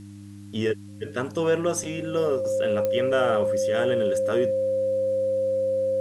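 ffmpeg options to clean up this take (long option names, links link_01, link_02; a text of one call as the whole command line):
ffmpeg -i in.wav -af "adeclick=threshold=4,bandreject=frequency=100.7:width_type=h:width=4,bandreject=frequency=201.4:width_type=h:width=4,bandreject=frequency=302.1:width_type=h:width=4,bandreject=frequency=530:width=30,agate=range=-21dB:threshold=-34dB" out.wav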